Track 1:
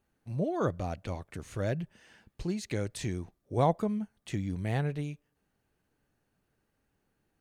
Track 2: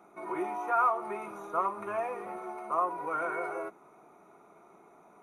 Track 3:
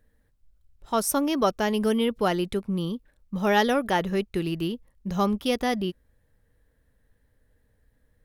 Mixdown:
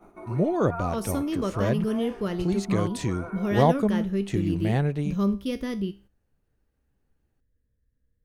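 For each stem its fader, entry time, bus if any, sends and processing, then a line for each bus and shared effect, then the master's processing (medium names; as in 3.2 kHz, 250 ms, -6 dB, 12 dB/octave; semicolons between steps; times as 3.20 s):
+3.0 dB, 0.00 s, no send, bass shelf 200 Hz -10.5 dB
+1.0 dB, 0.00 s, no send, gain riding within 4 dB 2 s; auto duck -12 dB, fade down 0.35 s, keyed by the first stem
-4.5 dB, 0.00 s, no send, peaking EQ 770 Hz -15 dB 0.37 oct; feedback comb 66 Hz, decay 0.36 s, harmonics all, mix 60%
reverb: none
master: gate -58 dBFS, range -9 dB; bass shelf 430 Hz +11.5 dB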